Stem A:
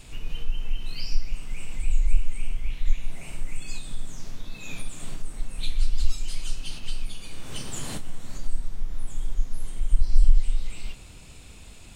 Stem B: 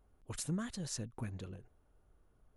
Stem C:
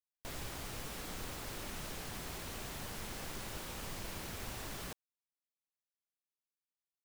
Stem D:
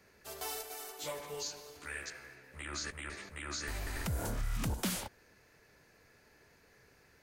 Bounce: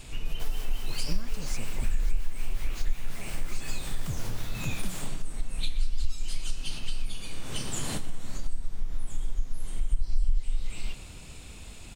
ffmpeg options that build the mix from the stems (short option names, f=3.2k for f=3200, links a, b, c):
-filter_complex "[0:a]volume=1.5dB,asplit=2[a][b];[b]volume=-17.5dB[c];[1:a]adelay=600,volume=1.5dB[d];[2:a]acrossover=split=740[e][f];[e]aeval=exprs='val(0)*(1-0.5/2+0.5/2*cos(2*PI*5.5*n/s))':c=same[g];[f]aeval=exprs='val(0)*(1-0.5/2-0.5/2*cos(2*PI*5.5*n/s))':c=same[h];[g][h]amix=inputs=2:normalize=0,adelay=150,volume=2.5dB[i];[3:a]equalizer=f=130:w=1.5:g=12.5,volume=-6dB[j];[c]aecho=0:1:119:1[k];[a][d][i][j][k]amix=inputs=5:normalize=0,acompressor=threshold=-22dB:ratio=2.5"